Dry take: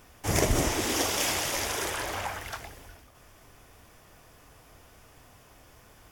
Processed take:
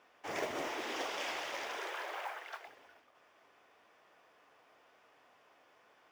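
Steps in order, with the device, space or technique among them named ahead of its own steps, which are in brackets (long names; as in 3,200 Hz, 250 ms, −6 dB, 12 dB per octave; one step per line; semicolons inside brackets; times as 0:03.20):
carbon microphone (band-pass filter 440–3,200 Hz; soft clipping −20.5 dBFS, distortion −21 dB; noise that follows the level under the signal 23 dB)
0:01.78–0:02.66: Butterworth high-pass 320 Hz 96 dB per octave
level −6.5 dB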